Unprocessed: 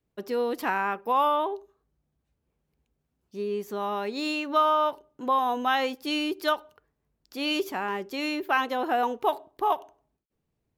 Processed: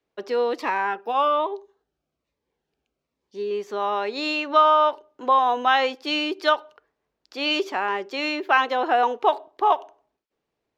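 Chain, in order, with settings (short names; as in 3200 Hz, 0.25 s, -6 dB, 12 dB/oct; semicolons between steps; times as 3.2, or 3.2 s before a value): three-band isolator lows -17 dB, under 320 Hz, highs -24 dB, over 6400 Hz; 0.58–3.51 cascading phaser falling 1.2 Hz; gain +6 dB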